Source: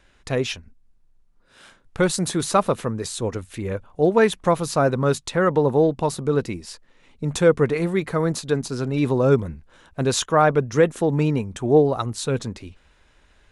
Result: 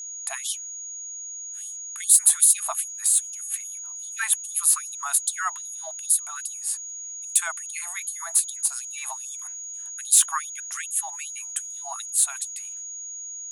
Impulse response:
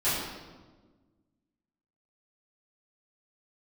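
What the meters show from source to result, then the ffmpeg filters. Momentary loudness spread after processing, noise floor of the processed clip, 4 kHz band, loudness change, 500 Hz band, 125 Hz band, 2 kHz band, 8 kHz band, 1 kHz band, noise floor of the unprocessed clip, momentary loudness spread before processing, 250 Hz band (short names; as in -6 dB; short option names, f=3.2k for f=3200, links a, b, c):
16 LU, -37 dBFS, -3.0 dB, -2.0 dB, -30.5 dB, under -40 dB, -5.0 dB, +14.0 dB, -10.5 dB, -58 dBFS, 12 LU, under -40 dB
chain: -af "aexciter=amount=8.1:drive=8.8:freq=7.9k,agate=range=-33dB:threshold=-43dB:ratio=3:detection=peak,aeval=exprs='val(0)+0.0282*sin(2*PI*6700*n/s)':c=same,afftfilt=real='re*gte(b*sr/1024,620*pow(3100/620,0.5+0.5*sin(2*PI*2.5*pts/sr)))':imag='im*gte(b*sr/1024,620*pow(3100/620,0.5+0.5*sin(2*PI*2.5*pts/sr)))':win_size=1024:overlap=0.75,volume=-2.5dB"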